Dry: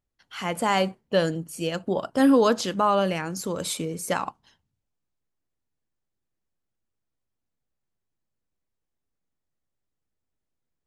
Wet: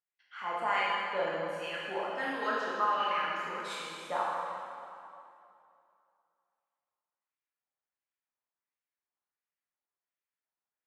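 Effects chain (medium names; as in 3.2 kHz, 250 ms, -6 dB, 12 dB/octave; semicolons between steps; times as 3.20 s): LFO band-pass sine 1.4 Hz 930–2400 Hz; reverberation RT60 2.6 s, pre-delay 13 ms, DRR -5.5 dB; trim -4.5 dB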